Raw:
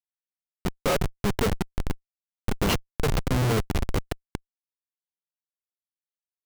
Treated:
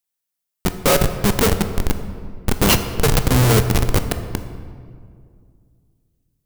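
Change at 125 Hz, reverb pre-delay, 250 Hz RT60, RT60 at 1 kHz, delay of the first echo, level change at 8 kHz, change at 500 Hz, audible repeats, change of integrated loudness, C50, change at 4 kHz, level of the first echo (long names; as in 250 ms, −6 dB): +9.5 dB, 15 ms, 2.7 s, 2.0 s, no echo audible, +14.0 dB, +8.5 dB, no echo audible, +9.5 dB, 9.5 dB, +10.5 dB, no echo audible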